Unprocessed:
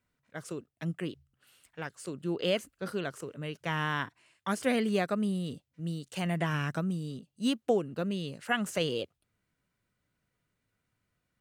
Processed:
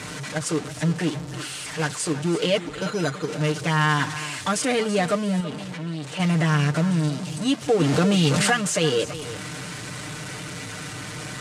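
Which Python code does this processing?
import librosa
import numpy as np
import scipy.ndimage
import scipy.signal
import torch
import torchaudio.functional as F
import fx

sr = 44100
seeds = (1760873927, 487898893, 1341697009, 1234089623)

p1 = x + 0.5 * 10.0 ** (-31.0 / 20.0) * np.sign(x)
p2 = scipy.signal.sosfilt(scipy.signal.butter(2, 81.0, 'highpass', fs=sr, output='sos'), p1)
p3 = fx.high_shelf(p2, sr, hz=6700.0, db=5.0)
p4 = fx.resample_bad(p3, sr, factor=8, down='filtered', up='hold', at=(2.57, 3.28))
p5 = fx.bass_treble(p4, sr, bass_db=-7, treble_db=-11, at=(5.4, 6.2))
p6 = fx.level_steps(p5, sr, step_db=16)
p7 = p5 + (p6 * 10.0 ** (1.0 / 20.0))
p8 = scipy.signal.sosfilt(scipy.signal.butter(4, 9000.0, 'lowpass', fs=sr, output='sos'), p7)
p9 = p8 + 0.65 * np.pad(p8, (int(6.6 * sr / 1000.0), 0))[:len(p8)]
p10 = p9 + fx.echo_single(p9, sr, ms=330, db=-14.0, dry=0)
y = fx.env_flatten(p10, sr, amount_pct=70, at=(7.79, 8.51), fade=0.02)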